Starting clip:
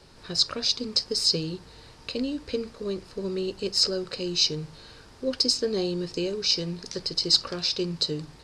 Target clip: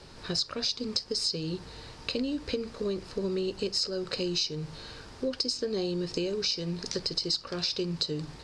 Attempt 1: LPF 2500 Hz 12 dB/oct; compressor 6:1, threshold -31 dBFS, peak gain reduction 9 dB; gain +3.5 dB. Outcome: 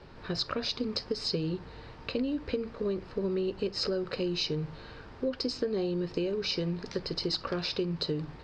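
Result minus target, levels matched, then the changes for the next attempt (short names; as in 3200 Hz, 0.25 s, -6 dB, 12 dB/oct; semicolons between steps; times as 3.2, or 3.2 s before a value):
8000 Hz band -9.0 dB
change: LPF 9300 Hz 12 dB/oct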